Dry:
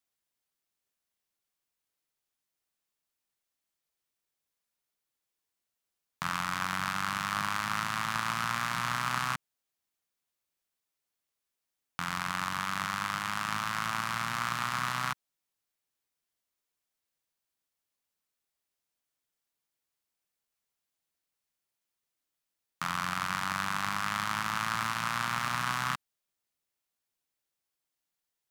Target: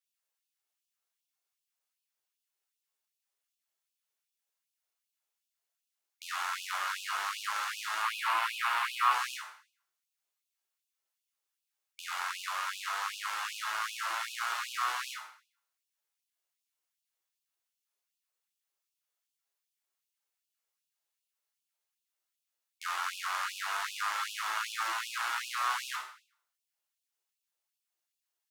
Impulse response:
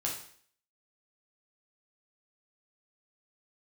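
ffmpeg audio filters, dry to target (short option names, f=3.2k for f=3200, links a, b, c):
-filter_complex "[0:a]asettb=1/sr,asplit=3[a][b][c];[a]atrim=end=8.024[d];[b]atrim=start=8.02:end=9.12,asetpts=PTS-STARTPTS,afade=t=in:d=0.004:c=qsin,afade=t=out:st=1.096:d=0.004:c=qsin,equalizer=f=1k:t=o:w=0.67:g=8,equalizer=f=2.5k:t=o:w=0.67:g=5,equalizer=f=6.3k:t=o:w=0.67:g=-7[e];[c]atrim=start=9.116[f];[d][e]acrossfade=d=0.004:c1=hsin:c2=qsin[g];[g][f]acrossfade=d=0.004:c1=qsin:c2=hsin[h];[1:a]atrim=start_sample=2205[i];[h][i]afir=irnorm=-1:irlink=0,afftfilt=real='re*gte(b*sr/1024,320*pow(2500/320,0.5+0.5*sin(2*PI*2.6*pts/sr)))':imag='im*gte(b*sr/1024,320*pow(2500/320,0.5+0.5*sin(2*PI*2.6*pts/sr)))':win_size=1024:overlap=0.75,volume=-4.5dB"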